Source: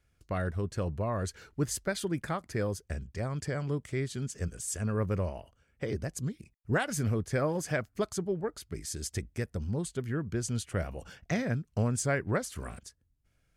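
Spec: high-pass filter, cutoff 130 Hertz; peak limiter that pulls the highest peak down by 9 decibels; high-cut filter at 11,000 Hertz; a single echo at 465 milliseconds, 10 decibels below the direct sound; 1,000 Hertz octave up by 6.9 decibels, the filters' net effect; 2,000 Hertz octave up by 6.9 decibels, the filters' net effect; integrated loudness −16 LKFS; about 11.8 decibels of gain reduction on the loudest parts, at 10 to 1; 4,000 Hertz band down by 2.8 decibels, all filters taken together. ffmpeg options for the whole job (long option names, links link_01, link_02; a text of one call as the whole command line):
ffmpeg -i in.wav -af "highpass=130,lowpass=11000,equalizer=frequency=1000:width_type=o:gain=7.5,equalizer=frequency=2000:width_type=o:gain=7,equalizer=frequency=4000:width_type=o:gain=-6,acompressor=threshold=-32dB:ratio=10,alimiter=level_in=3dB:limit=-24dB:level=0:latency=1,volume=-3dB,aecho=1:1:465:0.316,volume=24dB" out.wav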